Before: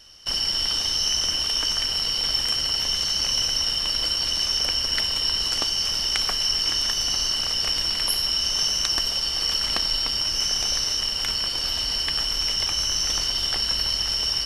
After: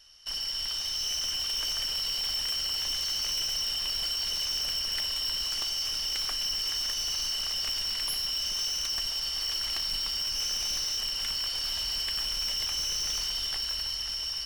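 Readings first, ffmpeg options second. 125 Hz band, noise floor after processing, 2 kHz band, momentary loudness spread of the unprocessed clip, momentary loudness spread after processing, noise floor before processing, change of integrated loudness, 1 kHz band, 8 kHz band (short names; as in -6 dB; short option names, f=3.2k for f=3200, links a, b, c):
under -10 dB, -34 dBFS, -7.5 dB, 2 LU, 1 LU, -27 dBFS, -7.0 dB, -10.0 dB, -6.5 dB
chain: -af "equalizer=f=230:w=0.38:g=-10.5,dynaudnorm=f=130:g=17:m=4dB,asoftclip=type=tanh:threshold=-20dB,volume=-6.5dB"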